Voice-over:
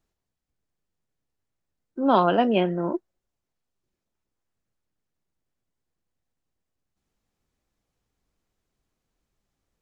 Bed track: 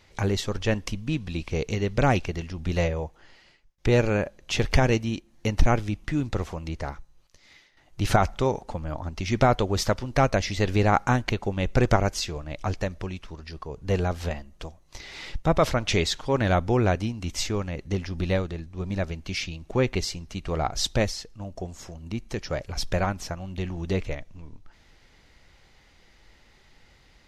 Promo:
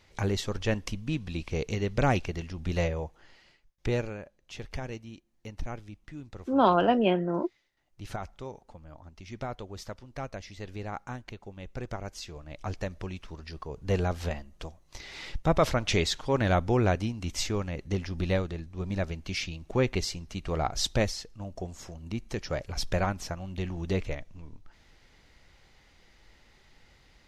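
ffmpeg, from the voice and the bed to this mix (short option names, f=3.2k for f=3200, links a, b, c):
-filter_complex "[0:a]adelay=4500,volume=-2.5dB[a];[1:a]volume=10.5dB,afade=t=out:st=3.69:d=0.47:silence=0.223872,afade=t=in:st=11.96:d=1.4:silence=0.199526[b];[a][b]amix=inputs=2:normalize=0"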